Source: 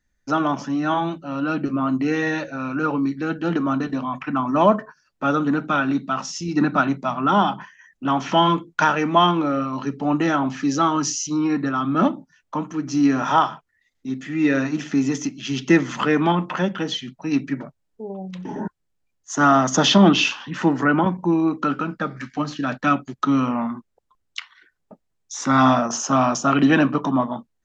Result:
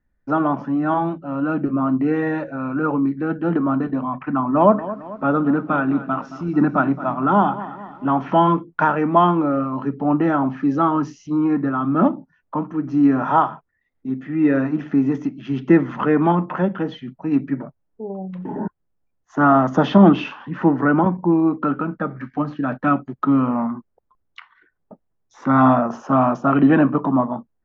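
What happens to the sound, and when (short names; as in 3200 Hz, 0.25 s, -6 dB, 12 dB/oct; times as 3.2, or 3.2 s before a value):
4.37–8.05 lo-fi delay 0.221 s, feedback 55%, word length 7-bit, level -14.5 dB
whole clip: LPF 1300 Hz 12 dB/oct; gain +2.5 dB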